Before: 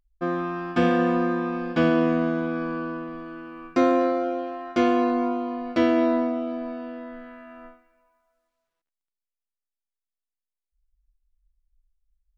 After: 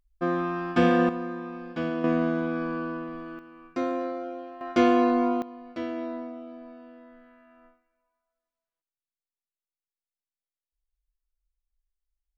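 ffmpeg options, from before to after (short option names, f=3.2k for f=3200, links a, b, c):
-af "asetnsamples=n=441:p=0,asendcmd='1.09 volume volume -9.5dB;2.04 volume volume -1.5dB;3.39 volume volume -9dB;4.61 volume volume 0.5dB;5.42 volume volume -12.5dB',volume=0dB"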